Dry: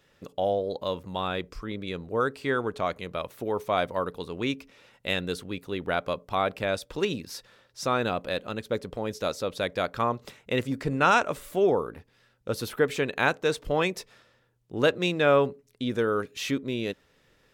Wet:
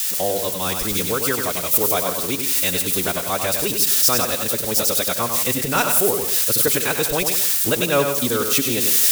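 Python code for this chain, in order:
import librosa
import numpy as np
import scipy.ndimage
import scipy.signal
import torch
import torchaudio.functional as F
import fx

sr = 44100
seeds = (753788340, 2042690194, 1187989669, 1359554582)

y = x + 0.5 * 10.0 ** (-24.0 / 20.0) * np.diff(np.sign(x), prepend=np.sign(x[:1]))
y = fx.recorder_agc(y, sr, target_db=-16.5, rise_db_per_s=10.0, max_gain_db=30)
y = fx.high_shelf(y, sr, hz=3700.0, db=11.0)
y = y + 10.0 ** (-12.0 / 20.0) * np.pad(y, (int(323 * sr / 1000.0), 0))[:len(y)]
y = fx.transient(y, sr, attack_db=-6, sustain_db=-1)
y = fx.stretch_vocoder(y, sr, factor=0.52)
y = y + 10.0 ** (-6.0 / 20.0) * np.pad(y, (int(98 * sr / 1000.0), 0))[:len(y)]
y = y * librosa.db_to_amplitude(3.5)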